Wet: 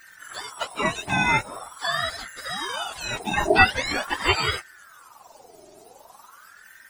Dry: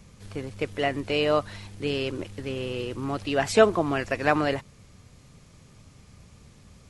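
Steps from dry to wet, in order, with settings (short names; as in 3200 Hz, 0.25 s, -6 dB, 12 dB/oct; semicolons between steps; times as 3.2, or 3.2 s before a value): spectrum mirrored in octaves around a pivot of 950 Hz; ring modulator with a swept carrier 1100 Hz, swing 55%, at 0.44 Hz; gain +6 dB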